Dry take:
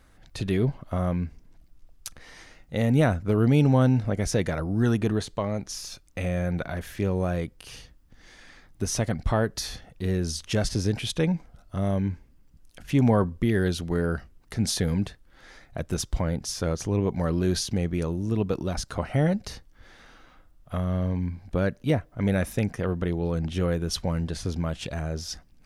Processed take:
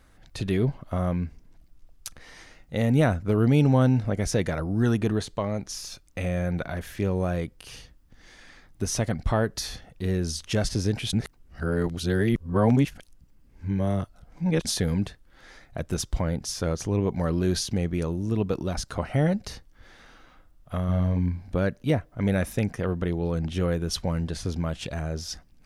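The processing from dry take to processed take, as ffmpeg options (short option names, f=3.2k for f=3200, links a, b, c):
-filter_complex "[0:a]asettb=1/sr,asplit=3[a][b][c];[a]atrim=end=20.854[d];[b]atrim=start=20.85:end=21.55,asetpts=PTS-STARTPTS,afade=t=in:d=0.004:c=qsin,afade=t=out:st=0.696:d=0.004:c=qsin,asplit=2[e][f];[f]adelay=34,volume=-4.5dB[g];[e][g]amix=inputs=2:normalize=0,atrim=end_sample=30870[h];[c]atrim=start=21.546[i];[d][h]acrossfade=d=0.004:c1=hsin:c2=qsin[j];[j][i]acrossfade=d=0.004:c1=qsin:c2=hsin,asplit=3[k][l][m];[k]atrim=end=11.132[n];[l]atrim=start=11.128:end=14.652,asetpts=PTS-STARTPTS,areverse[o];[m]atrim=start=14.648[p];[n][o]acrossfade=d=0.004:c1=hsin:c2=hsin[q];[q][p]acrossfade=d=0.004:c1=hsin:c2=hsin"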